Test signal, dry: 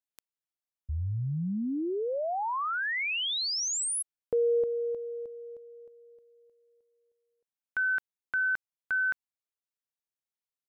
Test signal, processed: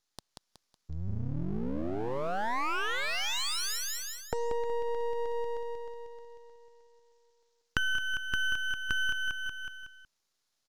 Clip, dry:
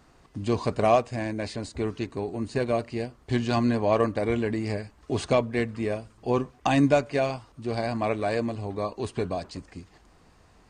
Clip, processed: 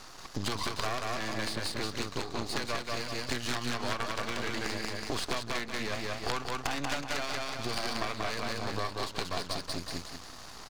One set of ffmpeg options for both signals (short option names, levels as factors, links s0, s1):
-filter_complex "[0:a]highshelf=f=3200:t=q:w=1.5:g=12.5,acrossover=split=100|250|1000|4600[s0][s1][s2][s3][s4];[s0]acompressor=threshold=0.00562:ratio=4[s5];[s1]acompressor=threshold=0.0178:ratio=4[s6];[s2]acompressor=threshold=0.0126:ratio=4[s7];[s3]acompressor=threshold=0.0251:ratio=4[s8];[s4]acompressor=threshold=0.00562:ratio=4[s9];[s5][s6][s7][s8][s9]amix=inputs=5:normalize=0,aresample=16000,aeval=exprs='(mod(10.6*val(0)+1,2)-1)/10.6':c=same,aresample=44100,equalizer=f=1400:t=o:w=2.4:g=14,aecho=1:1:185|370|555|740|925:0.708|0.269|0.102|0.0388|0.0148,aeval=exprs='max(val(0),0)':c=same,acompressor=threshold=0.0316:ratio=6:attack=5.6:release=938:knee=1:detection=peak,volume=1.68"